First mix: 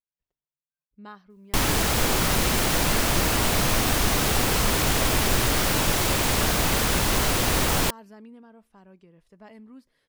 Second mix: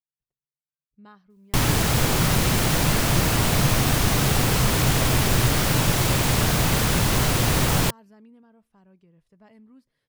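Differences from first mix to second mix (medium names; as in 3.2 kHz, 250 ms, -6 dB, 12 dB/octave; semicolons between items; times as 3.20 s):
speech -7.0 dB; master: add peaking EQ 130 Hz +10 dB 0.91 oct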